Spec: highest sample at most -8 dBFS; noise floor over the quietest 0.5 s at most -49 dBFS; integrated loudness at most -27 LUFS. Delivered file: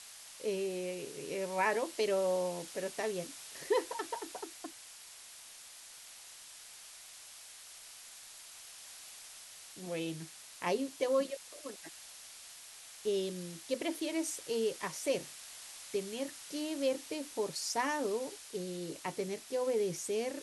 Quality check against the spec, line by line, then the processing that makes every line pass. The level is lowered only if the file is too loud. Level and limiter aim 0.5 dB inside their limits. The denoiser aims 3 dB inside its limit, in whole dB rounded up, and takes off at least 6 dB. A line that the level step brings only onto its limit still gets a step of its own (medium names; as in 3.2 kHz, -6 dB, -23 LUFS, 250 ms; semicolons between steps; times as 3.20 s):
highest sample -19.0 dBFS: pass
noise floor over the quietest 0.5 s -53 dBFS: pass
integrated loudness -36.5 LUFS: pass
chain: none needed